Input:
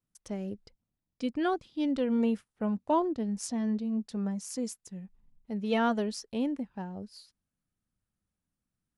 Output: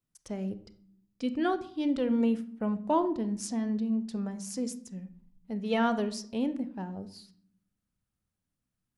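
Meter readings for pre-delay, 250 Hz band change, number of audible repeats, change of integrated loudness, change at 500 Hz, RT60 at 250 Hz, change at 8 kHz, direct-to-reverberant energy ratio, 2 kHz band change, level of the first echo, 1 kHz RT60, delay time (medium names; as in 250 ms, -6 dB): 30 ms, +1.0 dB, no echo, +0.5 dB, +0.5 dB, 1.0 s, 0.0 dB, 11.5 dB, +0.5 dB, no echo, 0.60 s, no echo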